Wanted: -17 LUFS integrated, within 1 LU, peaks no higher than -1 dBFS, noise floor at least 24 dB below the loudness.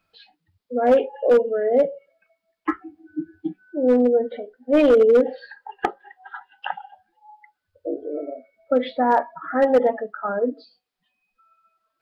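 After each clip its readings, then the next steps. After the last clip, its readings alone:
clipped samples 1.3%; clipping level -10.0 dBFS; loudness -21.0 LUFS; peak level -10.0 dBFS; loudness target -17.0 LUFS
-> clip repair -10 dBFS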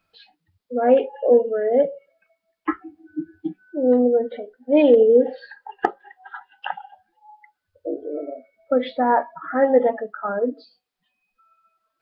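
clipped samples 0.0%; loudness -20.5 LUFS; peak level -1.0 dBFS; loudness target -17.0 LUFS
-> trim +3.5 dB; peak limiter -1 dBFS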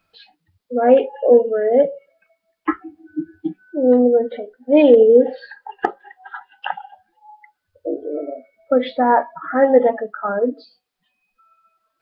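loudness -17.0 LUFS; peak level -1.0 dBFS; noise floor -76 dBFS

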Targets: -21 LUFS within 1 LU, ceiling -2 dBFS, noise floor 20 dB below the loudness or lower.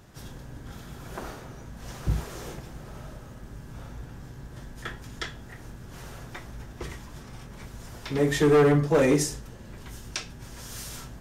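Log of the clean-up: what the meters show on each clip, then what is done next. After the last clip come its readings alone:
clipped samples 0.8%; clipping level -15.0 dBFS; loudness -26.5 LUFS; peak level -15.0 dBFS; loudness target -21.0 LUFS
-> clip repair -15 dBFS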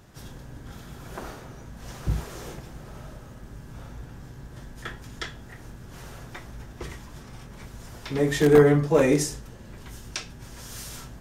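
clipped samples 0.0%; loudness -23.5 LUFS; peak level -6.0 dBFS; loudness target -21.0 LUFS
-> trim +2.5 dB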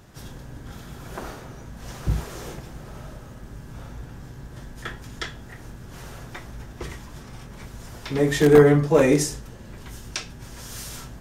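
loudness -21.0 LUFS; peak level -3.5 dBFS; noise floor -42 dBFS

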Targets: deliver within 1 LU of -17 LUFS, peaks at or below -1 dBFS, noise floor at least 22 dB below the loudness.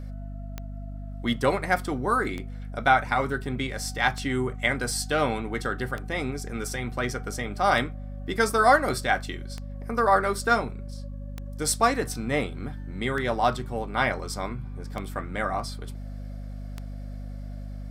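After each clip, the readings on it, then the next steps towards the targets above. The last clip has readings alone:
clicks found 10; hum 50 Hz; highest harmonic 250 Hz; hum level -33 dBFS; loudness -26.5 LUFS; peak level -6.5 dBFS; loudness target -17.0 LUFS
-> de-click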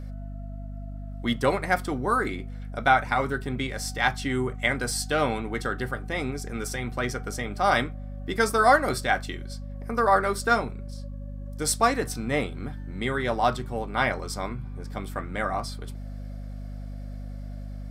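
clicks found 0; hum 50 Hz; highest harmonic 250 Hz; hum level -33 dBFS
-> de-hum 50 Hz, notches 5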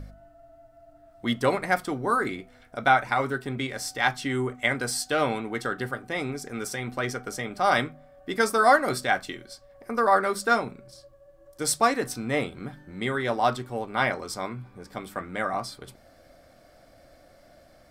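hum not found; loudness -26.5 LUFS; peak level -6.5 dBFS; loudness target -17.0 LUFS
-> trim +9.5 dB; peak limiter -1 dBFS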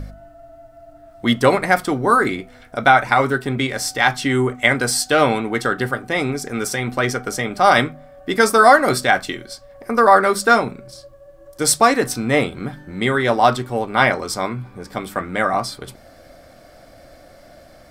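loudness -17.5 LUFS; peak level -1.0 dBFS; noise floor -46 dBFS

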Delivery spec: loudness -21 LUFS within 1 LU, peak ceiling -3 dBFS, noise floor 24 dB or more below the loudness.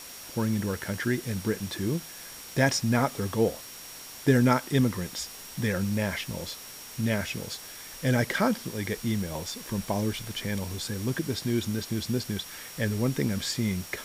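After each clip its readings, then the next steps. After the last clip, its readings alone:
steady tone 5.6 kHz; tone level -48 dBFS; noise floor -44 dBFS; noise floor target -53 dBFS; loudness -29.0 LUFS; peak level -7.5 dBFS; loudness target -21.0 LUFS
-> band-stop 5.6 kHz, Q 30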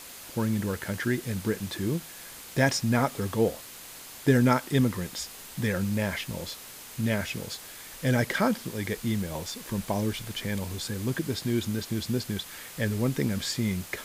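steady tone not found; noise floor -45 dBFS; noise floor target -53 dBFS
-> noise reduction 8 dB, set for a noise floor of -45 dBFS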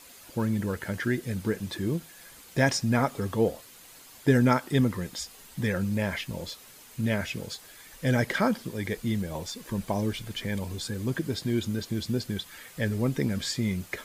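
noise floor -51 dBFS; noise floor target -53 dBFS
-> noise reduction 6 dB, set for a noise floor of -51 dBFS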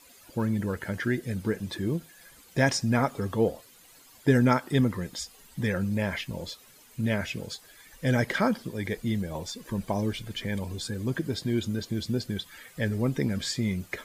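noise floor -55 dBFS; loudness -29.0 LUFS; peak level -7.5 dBFS; loudness target -21.0 LUFS
-> trim +8 dB; peak limiter -3 dBFS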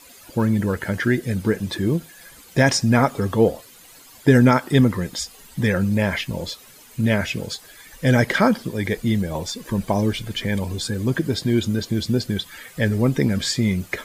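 loudness -21.5 LUFS; peak level -3.0 dBFS; noise floor -47 dBFS

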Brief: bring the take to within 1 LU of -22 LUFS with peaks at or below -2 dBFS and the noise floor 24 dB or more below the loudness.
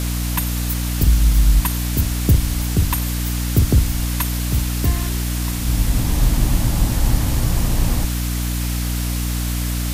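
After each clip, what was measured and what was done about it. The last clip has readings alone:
hum 60 Hz; highest harmonic 300 Hz; hum level -19 dBFS; noise floor -22 dBFS; noise floor target -44 dBFS; loudness -20.0 LUFS; peak level -3.5 dBFS; loudness target -22.0 LUFS
-> hum notches 60/120/180/240/300 Hz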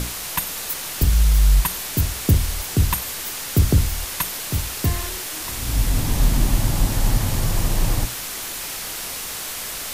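hum not found; noise floor -30 dBFS; noise floor target -47 dBFS
-> noise reduction 17 dB, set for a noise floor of -30 dBFS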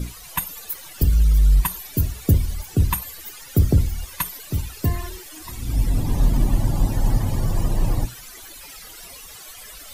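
noise floor -41 dBFS; noise floor target -47 dBFS
-> noise reduction 6 dB, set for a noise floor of -41 dBFS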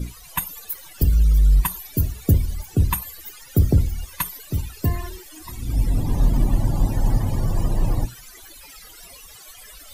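noise floor -44 dBFS; noise floor target -47 dBFS
-> noise reduction 6 dB, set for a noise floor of -44 dBFS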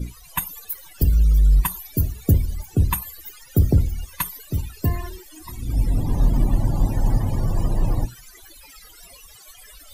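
noise floor -47 dBFS; loudness -23.0 LUFS; peak level -5.5 dBFS; loudness target -22.0 LUFS
-> trim +1 dB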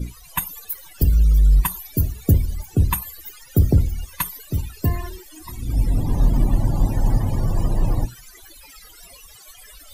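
loudness -22.0 LUFS; peak level -4.5 dBFS; noise floor -46 dBFS

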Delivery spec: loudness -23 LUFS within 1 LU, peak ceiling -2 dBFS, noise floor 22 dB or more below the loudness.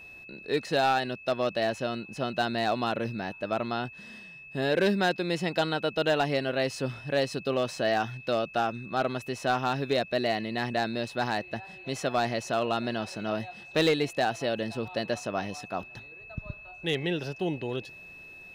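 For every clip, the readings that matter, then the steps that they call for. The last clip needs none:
clipped samples 0.3%; clipping level -17.5 dBFS; steady tone 2.6 kHz; tone level -45 dBFS; loudness -29.5 LUFS; peak level -17.5 dBFS; loudness target -23.0 LUFS
-> clip repair -17.5 dBFS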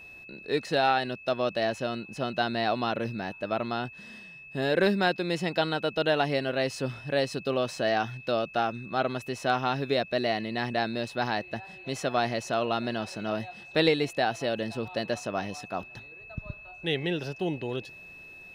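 clipped samples 0.0%; steady tone 2.6 kHz; tone level -45 dBFS
-> band-stop 2.6 kHz, Q 30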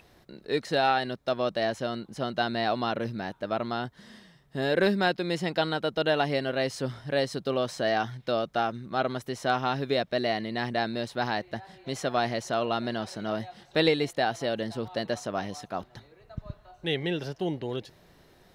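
steady tone not found; loudness -29.0 LUFS; peak level -11.0 dBFS; loudness target -23.0 LUFS
-> trim +6 dB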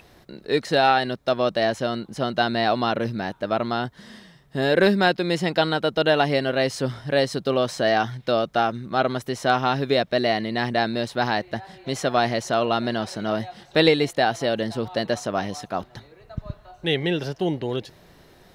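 loudness -23.0 LUFS; peak level -5.0 dBFS; noise floor -53 dBFS

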